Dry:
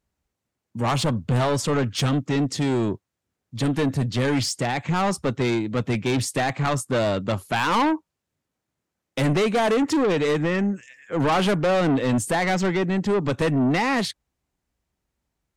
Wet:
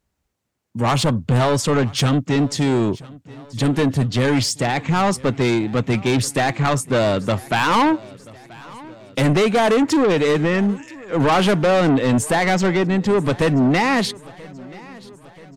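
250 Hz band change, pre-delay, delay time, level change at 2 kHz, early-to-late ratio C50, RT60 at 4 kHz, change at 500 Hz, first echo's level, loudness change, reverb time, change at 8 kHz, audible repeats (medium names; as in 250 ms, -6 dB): +4.5 dB, no reverb, 982 ms, +4.5 dB, no reverb, no reverb, +4.5 dB, -22.0 dB, +4.5 dB, no reverb, +4.5 dB, 3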